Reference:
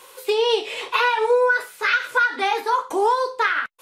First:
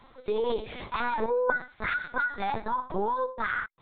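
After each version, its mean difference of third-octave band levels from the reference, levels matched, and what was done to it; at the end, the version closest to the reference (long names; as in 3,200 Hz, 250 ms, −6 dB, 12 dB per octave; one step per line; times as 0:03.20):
11.0 dB: parametric band 2,800 Hz −14.5 dB 0.33 octaves
brickwall limiter −14.5 dBFS, peak gain reduction 5.5 dB
linear-prediction vocoder at 8 kHz pitch kept
level −6 dB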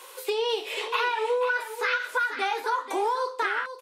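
3.5 dB: high-pass filter 320 Hz 12 dB per octave
downward compressor 2 to 1, threshold −29 dBFS, peak gain reduction 8 dB
single-tap delay 488 ms −10.5 dB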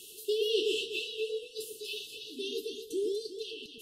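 15.0 dB: reversed playback
downward compressor, threshold −26 dBFS, peak gain reduction 12 dB
reversed playback
linear-phase brick-wall band-stop 460–2,600 Hz
delay that swaps between a low-pass and a high-pass 121 ms, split 1,200 Hz, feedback 55%, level −2 dB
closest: second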